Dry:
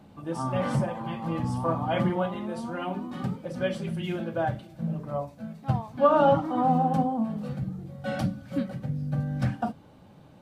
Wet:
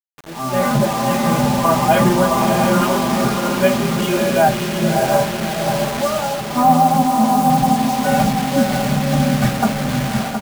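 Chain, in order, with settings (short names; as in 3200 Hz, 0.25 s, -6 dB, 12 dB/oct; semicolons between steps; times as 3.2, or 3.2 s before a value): LPF 3400 Hz 12 dB/oct; bell 180 Hz -7.5 dB 0.54 oct; comb 4.9 ms, depth 92%; 5.55–6.56 compressor 2:1, threshold -43 dBFS, peak gain reduction 17 dB; diffused feedback echo 0.603 s, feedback 46%, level -3.5 dB; bit-crush 6-bit; AGC gain up to 13.5 dB; echo 0.716 s -7.5 dB; gain -1 dB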